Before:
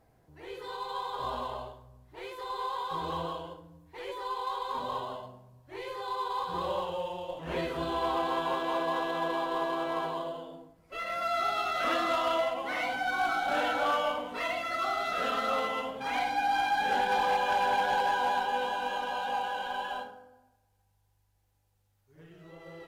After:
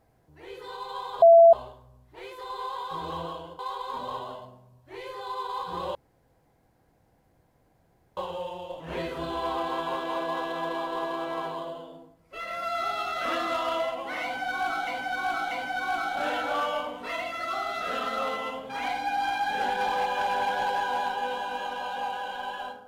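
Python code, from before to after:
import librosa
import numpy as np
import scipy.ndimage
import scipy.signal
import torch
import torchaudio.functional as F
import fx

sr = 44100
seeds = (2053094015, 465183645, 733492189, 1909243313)

y = fx.edit(x, sr, fx.bleep(start_s=1.22, length_s=0.31, hz=671.0, db=-10.0),
    fx.cut(start_s=3.59, length_s=0.81),
    fx.insert_room_tone(at_s=6.76, length_s=2.22),
    fx.repeat(start_s=12.82, length_s=0.64, count=3), tone=tone)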